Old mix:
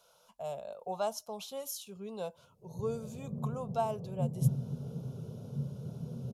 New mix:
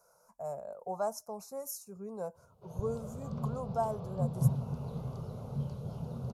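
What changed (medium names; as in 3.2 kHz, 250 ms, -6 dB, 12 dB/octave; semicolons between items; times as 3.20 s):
speech: add Butterworth band-stop 3.2 kHz, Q 0.79; background: remove Butterworth band-pass 230 Hz, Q 0.62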